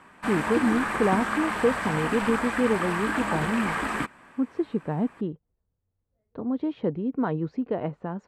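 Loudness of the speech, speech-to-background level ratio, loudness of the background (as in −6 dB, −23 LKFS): −28.0 LKFS, 0.5 dB, −28.5 LKFS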